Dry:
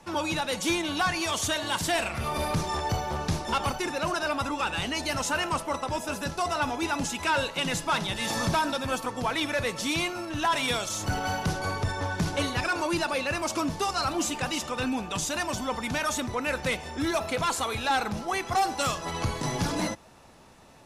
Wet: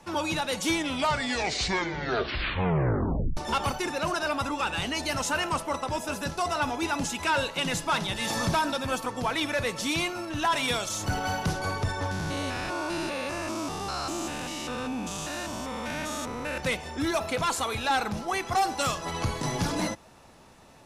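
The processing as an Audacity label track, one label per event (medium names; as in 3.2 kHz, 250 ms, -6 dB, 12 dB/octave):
0.630000	0.630000	tape stop 2.74 s
12.110000	16.580000	spectrogram pixelated in time every 200 ms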